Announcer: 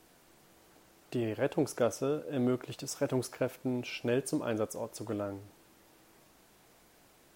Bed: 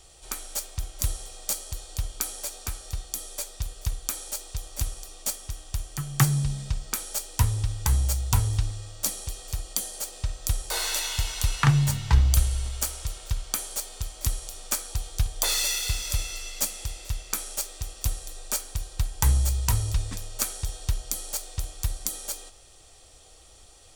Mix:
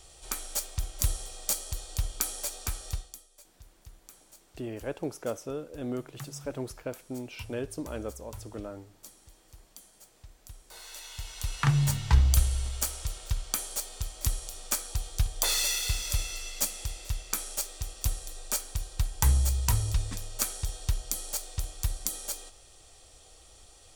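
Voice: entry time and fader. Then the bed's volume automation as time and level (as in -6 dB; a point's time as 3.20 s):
3.45 s, -4.0 dB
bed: 2.93 s -0.5 dB
3.28 s -22 dB
10.61 s -22 dB
11.86 s -2 dB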